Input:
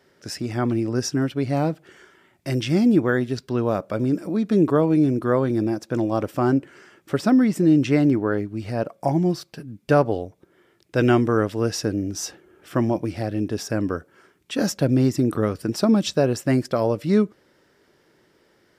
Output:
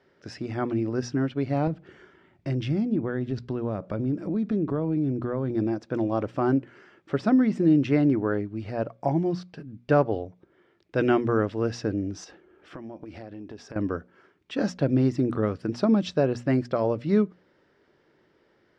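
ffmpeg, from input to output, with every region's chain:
ffmpeg -i in.wav -filter_complex "[0:a]asettb=1/sr,asplit=3[link_01][link_02][link_03];[link_01]atrim=end=1.674[link_04];[link_02]atrim=start=1.67:end=5.55,asetpts=PTS-STARTPTS,afade=type=in:duration=0.004:curve=qsin,afade=type=out:start_time=3.876:duration=0.004:curve=qsin,acompressor=threshold=-27dB:ratio=3:attack=3.2:release=140:knee=1:detection=peak,lowshelf=frequency=300:gain=9.5[link_05];[link_03]atrim=start=5.546[link_06];[link_04][link_05]acrossfade=duration=0.004:curve1=hsin:curve2=qsin[link_07];[link_07][link_06]acrossfade=duration=0.004:curve1=qsin:curve2=hsin,asettb=1/sr,asplit=3[link_08][link_09][link_10];[link_08]atrim=end=12.244[link_11];[link_09]atrim=start=12.24:end=13.76,asetpts=PTS-STARTPTS,afade=type=in:duration=0.004:curve=qsin,afade=type=out:start_time=1.516:duration=0.004:curve=qsin,equalizer=frequency=120:width=2.2:gain=-7.5,acompressor=threshold=-32dB:ratio=12:attack=3.2:release=140:knee=1:detection=peak[link_12];[link_10]atrim=start=13.756[link_13];[link_11][link_12]acrossfade=duration=0.004:curve1=hsin:curve2=qsin[link_14];[link_14][link_13]acrossfade=duration=0.004:curve1=qsin:curve2=hsin,lowpass=5700,aemphasis=mode=reproduction:type=50fm,bandreject=frequency=60:width_type=h:width=6,bandreject=frequency=120:width_type=h:width=6,bandreject=frequency=180:width_type=h:width=6,bandreject=frequency=240:width_type=h:width=6,volume=-3.5dB" out.wav

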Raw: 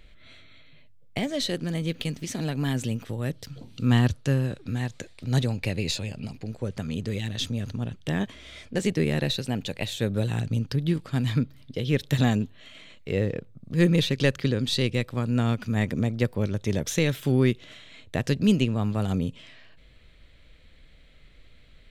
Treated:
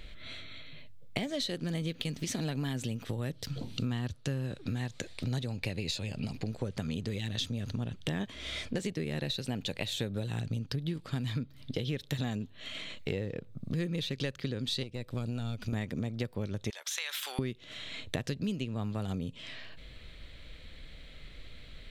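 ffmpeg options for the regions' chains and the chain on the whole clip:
ffmpeg -i in.wav -filter_complex "[0:a]asettb=1/sr,asplit=3[link_01][link_02][link_03];[link_01]atrim=end=14.834[link_04];[link_02]atrim=start=14.83:end=15.73,asetpts=PTS-STARTPTS,afade=type=in:duration=0.004:curve=qsin,afade=type=out:start_time=0.896:duration=0.004:curve=qsin,asubboost=boost=9:cutoff=99,acrossover=split=740|2200|4700[link_05][link_06][link_07][link_08];[link_05]acompressor=threshold=-31dB:ratio=3[link_09];[link_06]acompressor=threshold=-51dB:ratio=3[link_10];[link_07]acompressor=threshold=-49dB:ratio=3[link_11];[link_08]acompressor=threshold=-56dB:ratio=3[link_12];[link_09][link_10][link_11][link_12]amix=inputs=4:normalize=0,aeval=exprs='(tanh(14.1*val(0)+0.6)-tanh(0.6))/14.1':channel_layout=same[link_13];[link_03]atrim=start=15.726[link_14];[link_04][link_13]acrossfade=duration=0.004:curve1=hsin:curve2=qsin[link_15];[link_15][link_14]acrossfade=duration=0.004:curve1=qsin:curve2=hsin,asettb=1/sr,asplit=3[link_16][link_17][link_18];[link_16]atrim=end=16.704[link_19];[link_17]atrim=start=16.7:end=17.39,asetpts=PTS-STARTPTS,afade=type=in:duration=0.004:curve=qsin,afade=type=out:start_time=0.686:duration=0.004:curve=qsin,highpass=frequency=900:width=0.5412,highpass=frequency=900:width=1.3066,acompressor=threshold=-35dB:ratio=3:attack=3.2:release=140:knee=1:detection=peak[link_20];[link_18]atrim=start=17.386[link_21];[link_19][link_20]acrossfade=duration=0.004:curve1=hsin:curve2=qsin[link_22];[link_22][link_21]acrossfade=duration=0.004:curve1=qsin:curve2=hsin,equalizer=frequency=3900:width_type=o:width=0.74:gain=3.5,acompressor=threshold=-36dB:ratio=10,volume=5dB" out.wav

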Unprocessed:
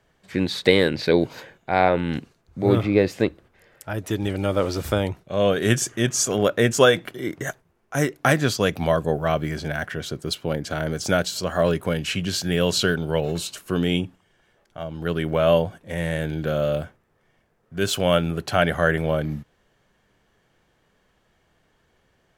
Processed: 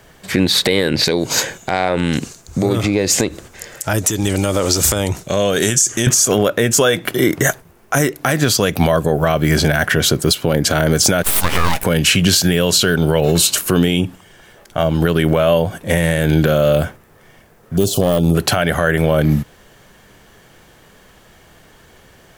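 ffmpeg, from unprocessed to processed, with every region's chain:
ffmpeg -i in.wav -filter_complex "[0:a]asettb=1/sr,asplit=3[link_01][link_02][link_03];[link_01]atrim=end=1.044[link_04];[link_02]atrim=start=1.04:end=6.07,asetpts=PTS-STARTPTS,afade=type=in:duration=0.004:curve=qsin,afade=type=out:start_time=5.026:duration=0.004:curve=qsin,acompressor=threshold=-30dB:ratio=6:attack=3.2:release=140:knee=1:detection=peak,equalizer=frequency=6900:width_type=o:width=1:gain=14[link_05];[link_03]atrim=start=6.066[link_06];[link_04][link_05]acrossfade=duration=0.004:curve1=hsin:curve2=qsin[link_07];[link_07][link_06]acrossfade=duration=0.004:curve1=qsin:curve2=hsin,asettb=1/sr,asplit=3[link_08][link_09][link_10];[link_08]atrim=end=11.234[link_11];[link_09]atrim=start=11.23:end=11.84,asetpts=PTS-STARTPTS,afade=type=in:duration=0.004:curve=qsin,afade=type=out:start_time=0.606:duration=0.004:curve=qsin,highpass=390,aeval=exprs='abs(val(0))':channel_layout=same[link_12];[link_10]atrim=start=11.836[link_13];[link_11][link_12]acrossfade=duration=0.004:curve1=hsin:curve2=qsin[link_14];[link_14][link_13]acrossfade=duration=0.004:curve1=qsin:curve2=hsin,asettb=1/sr,asplit=3[link_15][link_16][link_17];[link_15]atrim=end=17.774[link_18];[link_16]atrim=start=17.77:end=18.35,asetpts=PTS-STARTPTS,afade=type=in:duration=0.004:curve=qsin,afade=type=out:start_time=0.576:duration=0.004:curve=qsin,asuperstop=centerf=1800:order=4:qfactor=0.56,deesser=0.7,aeval=exprs='clip(val(0),-1,0.106)':channel_layout=same[link_19];[link_17]atrim=start=18.346[link_20];[link_18][link_19]acrossfade=duration=0.004:curve1=hsin:curve2=qsin[link_21];[link_21][link_20]acrossfade=duration=0.004:curve1=qsin:curve2=hsin,highshelf=frequency=7800:gain=11,acompressor=threshold=-25dB:ratio=10,alimiter=level_in=19.5dB:limit=-1dB:release=50:level=0:latency=1,volume=-2dB" out.wav

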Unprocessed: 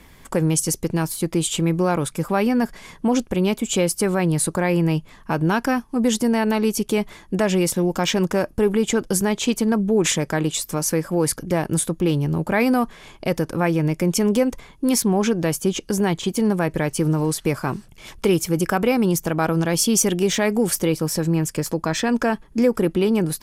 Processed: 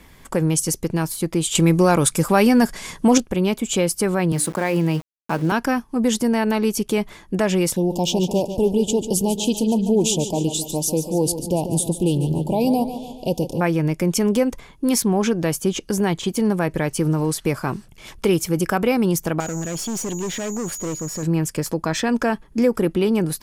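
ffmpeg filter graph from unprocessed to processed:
ffmpeg -i in.wav -filter_complex "[0:a]asettb=1/sr,asplit=3[link_01][link_02][link_03];[link_01]atrim=end=1.554[link_04];[link_02]atrim=start=1.55:end=3.18,asetpts=PTS-STARTPTS,afade=type=in:duration=0.004:curve=qsin,afade=type=out:start_time=1.626:duration=0.004:curve=qsin,equalizer=frequency=8000:width=0.57:gain=8,acontrast=22[link_05];[link_03]atrim=start=3.176[link_06];[link_04][link_05]acrossfade=duration=0.004:curve1=hsin:curve2=qsin[link_07];[link_07][link_06]acrossfade=duration=0.004:curve1=qsin:curve2=hsin,asettb=1/sr,asplit=3[link_08][link_09][link_10];[link_08]atrim=end=4.324[link_11];[link_09]atrim=start=4.32:end=5.52,asetpts=PTS-STARTPTS,afade=type=in:duration=0.004:curve=qsin,afade=type=out:start_time=1.196:duration=0.004:curve=qsin,highpass=frequency=130:width=0.5412,highpass=frequency=130:width=1.3066,bandreject=frequency=60:width_type=h:width=6,bandreject=frequency=120:width_type=h:width=6,bandreject=frequency=180:width_type=h:width=6,bandreject=frequency=240:width_type=h:width=6,bandreject=frequency=300:width_type=h:width=6,bandreject=frequency=360:width_type=h:width=6,bandreject=frequency=420:width_type=h:width=6,bandreject=frequency=480:width_type=h:width=6,bandreject=frequency=540:width_type=h:width=6,aeval=exprs='val(0)*gte(abs(val(0)),0.02)':channel_layout=same[link_12];[link_10]atrim=start=5.516[link_13];[link_11][link_12]acrossfade=duration=0.004:curve1=hsin:curve2=qsin[link_14];[link_14][link_13]acrossfade=duration=0.004:curve1=qsin:curve2=hsin,asettb=1/sr,asplit=3[link_15][link_16][link_17];[link_15]atrim=end=7.764[link_18];[link_16]atrim=start=7.76:end=13.61,asetpts=PTS-STARTPTS,afade=type=in:duration=0.004:curve=qsin,afade=type=out:start_time=5.846:duration=0.004:curve=qsin,asuperstop=centerf=1600:order=12:qfactor=0.89,aecho=1:1:144|288|432|576|720|864:0.299|0.155|0.0807|0.042|0.0218|0.0114,atrim=end_sample=257985[link_19];[link_17]atrim=start=13.606[link_20];[link_18][link_19]acrossfade=duration=0.004:curve1=hsin:curve2=qsin[link_21];[link_21][link_20]acrossfade=duration=0.004:curve1=qsin:curve2=hsin,asettb=1/sr,asplit=3[link_22][link_23][link_24];[link_22]atrim=end=19.404[link_25];[link_23]atrim=start=19.4:end=21.23,asetpts=PTS-STARTPTS,afade=type=in:duration=0.004:curve=qsin,afade=type=out:start_time=1.826:duration=0.004:curve=qsin,highshelf=frequency=3700:gain=-9.5,aeval=exprs='val(0)+0.0355*sin(2*PI*6800*n/s)':channel_layout=same,aeval=exprs='(tanh(14.1*val(0)+0.35)-tanh(0.35))/14.1':channel_layout=same[link_26];[link_24]atrim=start=21.226[link_27];[link_25][link_26]acrossfade=duration=0.004:curve1=hsin:curve2=qsin[link_28];[link_28][link_27]acrossfade=duration=0.004:curve1=qsin:curve2=hsin" out.wav

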